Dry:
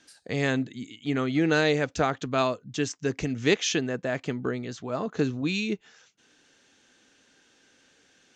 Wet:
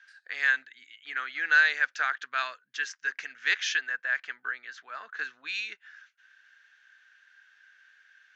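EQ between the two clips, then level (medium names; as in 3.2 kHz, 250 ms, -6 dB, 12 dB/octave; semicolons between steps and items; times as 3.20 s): dynamic bell 5.6 kHz, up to +7 dB, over -46 dBFS, Q 1; resonant high-pass 1.6 kHz, resonance Q 6.3; distance through air 140 m; -4.5 dB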